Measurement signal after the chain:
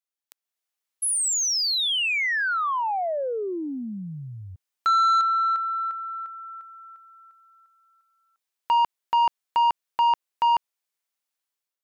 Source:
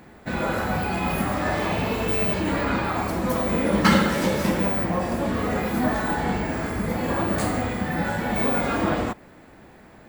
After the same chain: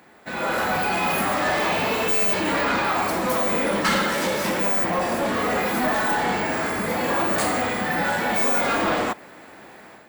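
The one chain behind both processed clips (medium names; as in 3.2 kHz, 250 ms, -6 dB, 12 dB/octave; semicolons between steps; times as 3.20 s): high-pass 580 Hz 6 dB/octave; level rider gain up to 8.5 dB; saturation -16.5 dBFS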